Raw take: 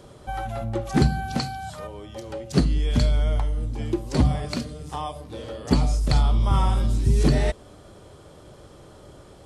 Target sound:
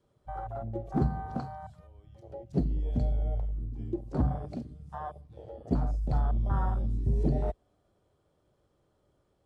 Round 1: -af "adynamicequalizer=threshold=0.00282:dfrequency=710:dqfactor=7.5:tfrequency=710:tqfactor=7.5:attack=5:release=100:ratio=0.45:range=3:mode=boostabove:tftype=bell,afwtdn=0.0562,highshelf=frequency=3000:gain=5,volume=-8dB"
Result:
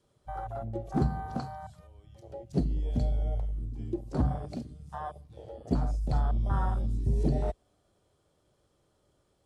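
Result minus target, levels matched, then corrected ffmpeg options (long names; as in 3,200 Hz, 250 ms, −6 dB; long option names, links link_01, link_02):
8,000 Hz band +8.5 dB
-af "adynamicequalizer=threshold=0.00282:dfrequency=710:dqfactor=7.5:tfrequency=710:tqfactor=7.5:attack=5:release=100:ratio=0.45:range=3:mode=boostabove:tftype=bell,afwtdn=0.0562,highshelf=frequency=3000:gain=-5,volume=-8dB"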